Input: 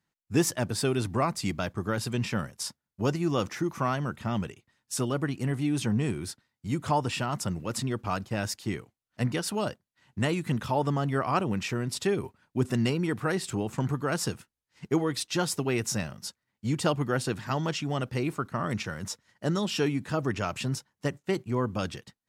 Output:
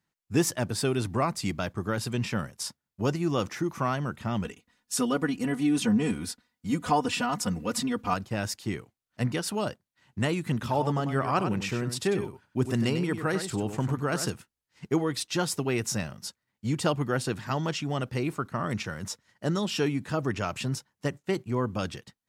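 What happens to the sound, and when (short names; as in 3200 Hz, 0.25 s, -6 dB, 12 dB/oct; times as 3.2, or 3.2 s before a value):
4.44–8.14 comb 4.1 ms, depth 98%
10.53–14.3 echo 97 ms -9 dB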